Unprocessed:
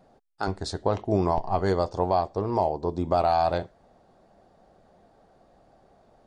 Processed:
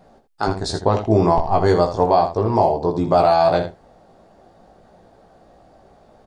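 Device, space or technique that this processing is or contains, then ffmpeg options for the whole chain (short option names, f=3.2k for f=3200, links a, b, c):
slapback doubling: -filter_complex "[0:a]asplit=3[a][b][c];[b]adelay=18,volume=-4dB[d];[c]adelay=80,volume=-9dB[e];[a][d][e]amix=inputs=3:normalize=0,volume=6.5dB"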